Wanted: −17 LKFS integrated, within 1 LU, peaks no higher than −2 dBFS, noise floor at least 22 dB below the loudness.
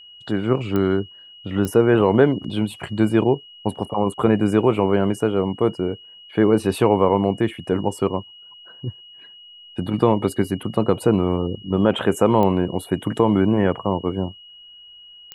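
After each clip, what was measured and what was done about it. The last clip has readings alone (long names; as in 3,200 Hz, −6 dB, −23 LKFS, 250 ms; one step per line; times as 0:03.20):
number of clicks 4; interfering tone 2,900 Hz; level of the tone −42 dBFS; integrated loudness −20.5 LKFS; sample peak −2.0 dBFS; target loudness −17.0 LKFS
→ click removal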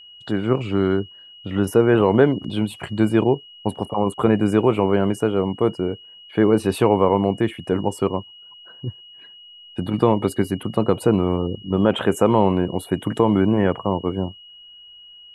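number of clicks 0; interfering tone 2,900 Hz; level of the tone −42 dBFS
→ notch filter 2,900 Hz, Q 30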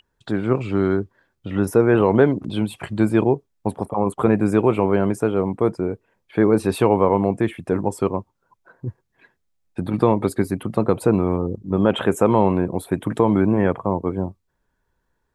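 interfering tone none found; integrated loudness −20.5 LKFS; sample peak −2.0 dBFS; target loudness −17.0 LKFS
→ level +3.5 dB
brickwall limiter −2 dBFS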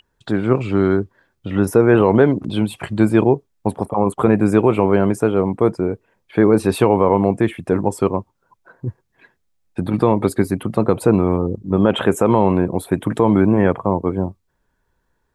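integrated loudness −17.5 LKFS; sample peak −2.0 dBFS; background noise floor −69 dBFS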